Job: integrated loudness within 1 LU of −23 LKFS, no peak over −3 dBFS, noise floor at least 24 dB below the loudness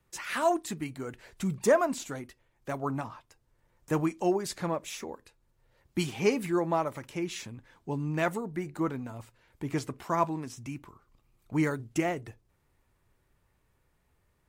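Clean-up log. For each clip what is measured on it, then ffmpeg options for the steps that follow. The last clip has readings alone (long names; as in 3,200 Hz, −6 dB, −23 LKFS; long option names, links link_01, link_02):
integrated loudness −31.5 LKFS; sample peak −13.5 dBFS; target loudness −23.0 LKFS
→ -af "volume=8.5dB"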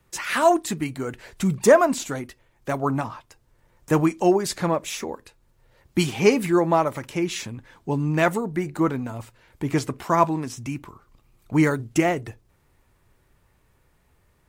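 integrated loudness −23.0 LKFS; sample peak −5.0 dBFS; background noise floor −64 dBFS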